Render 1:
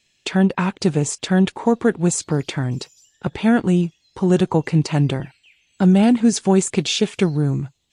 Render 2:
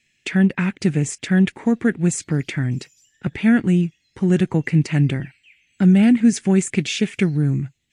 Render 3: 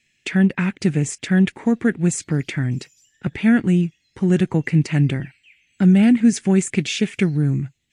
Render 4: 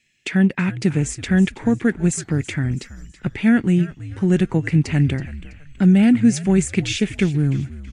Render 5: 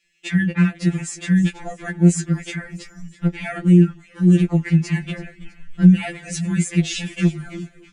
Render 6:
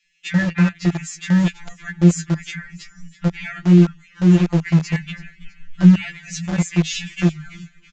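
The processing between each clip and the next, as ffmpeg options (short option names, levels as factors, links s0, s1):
-af "equalizer=f=125:t=o:w=1:g=3,equalizer=f=250:t=o:w=1:g=4,equalizer=f=500:t=o:w=1:g=-4,equalizer=f=1000:t=o:w=1:g=-10,equalizer=f=2000:t=o:w=1:g=11,equalizer=f=4000:t=o:w=1:g=-6,volume=0.75"
-af anull
-filter_complex "[0:a]asplit=5[s0][s1][s2][s3][s4];[s1]adelay=327,afreqshift=-70,volume=0.158[s5];[s2]adelay=654,afreqshift=-140,volume=0.0631[s6];[s3]adelay=981,afreqshift=-210,volume=0.0254[s7];[s4]adelay=1308,afreqshift=-280,volume=0.0101[s8];[s0][s5][s6][s7][s8]amix=inputs=5:normalize=0"
-af "flanger=delay=1.5:depth=4.9:regen=69:speed=1.1:shape=sinusoidal,afftfilt=real='re*2.83*eq(mod(b,8),0)':imag='im*2.83*eq(mod(b,8),0)':win_size=2048:overlap=0.75,volume=1.88"
-filter_complex "[0:a]acrossover=split=180|1100[s0][s1][s2];[s1]aeval=exprs='val(0)*gte(abs(val(0)),0.0631)':c=same[s3];[s0][s3][s2]amix=inputs=3:normalize=0,aresample=16000,aresample=44100,volume=1.12"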